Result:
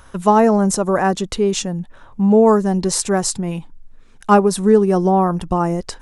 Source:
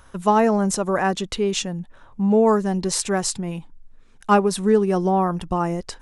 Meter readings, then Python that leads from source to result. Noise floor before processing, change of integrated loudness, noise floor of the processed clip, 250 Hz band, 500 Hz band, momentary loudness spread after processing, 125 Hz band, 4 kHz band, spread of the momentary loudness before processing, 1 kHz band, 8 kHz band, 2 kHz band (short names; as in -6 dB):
-49 dBFS, +4.5 dB, -44 dBFS, +5.0 dB, +4.5 dB, 13 LU, +5.0 dB, +1.5 dB, 12 LU, +4.0 dB, +4.0 dB, +1.5 dB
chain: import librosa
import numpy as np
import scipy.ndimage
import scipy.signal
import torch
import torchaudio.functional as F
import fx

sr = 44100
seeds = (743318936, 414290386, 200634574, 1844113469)

y = fx.dynamic_eq(x, sr, hz=2700.0, q=0.82, threshold_db=-39.0, ratio=4.0, max_db=-6)
y = y * librosa.db_to_amplitude(5.0)